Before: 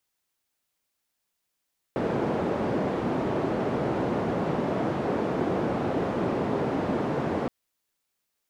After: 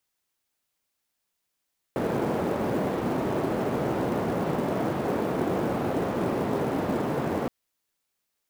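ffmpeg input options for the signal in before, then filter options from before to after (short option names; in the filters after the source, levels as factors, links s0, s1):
-f lavfi -i "anoisesrc=c=white:d=5.52:r=44100:seed=1,highpass=f=140,lowpass=f=490,volume=-4.7dB"
-af "acrusher=bits=6:mode=log:mix=0:aa=0.000001"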